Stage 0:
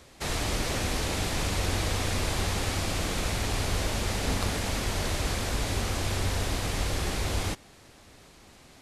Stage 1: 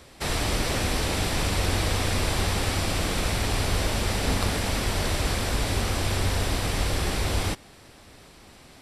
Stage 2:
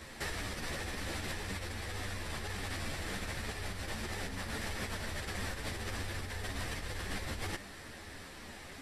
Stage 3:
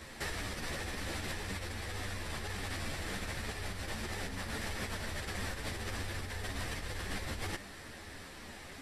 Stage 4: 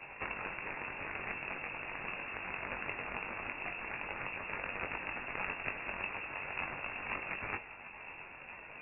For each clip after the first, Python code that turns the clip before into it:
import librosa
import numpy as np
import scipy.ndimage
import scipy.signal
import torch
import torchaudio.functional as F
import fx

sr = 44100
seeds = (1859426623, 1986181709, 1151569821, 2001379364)

y1 = fx.notch(x, sr, hz=6600.0, q=9.2)
y1 = F.gain(torch.from_numpy(y1), 3.5).numpy()
y2 = fx.peak_eq(y1, sr, hz=1800.0, db=8.5, octaves=0.38)
y2 = fx.over_compress(y2, sr, threshold_db=-32.0, ratio=-1.0)
y2 = fx.ensemble(y2, sr)
y2 = F.gain(torch.from_numpy(y2), -4.0).numpy()
y3 = y2
y4 = fx.cheby_harmonics(y3, sr, harmonics=(3, 7, 8), levels_db=(-11, -23, -25), full_scale_db=-23.5)
y4 = fx.freq_invert(y4, sr, carrier_hz=2700)
y4 = fx.doubler(y4, sr, ms=21.0, db=-6.0)
y4 = F.gain(torch.from_numpy(y4), 8.5).numpy()